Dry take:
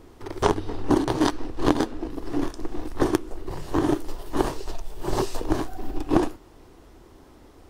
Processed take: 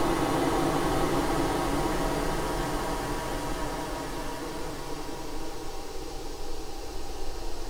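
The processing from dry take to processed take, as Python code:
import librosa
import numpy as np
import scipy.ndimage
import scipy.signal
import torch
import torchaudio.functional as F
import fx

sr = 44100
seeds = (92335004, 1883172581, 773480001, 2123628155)

y = fx.lower_of_two(x, sr, delay_ms=6.3)
y = fx.paulstretch(y, sr, seeds[0], factor=30.0, window_s=0.25, from_s=4.4)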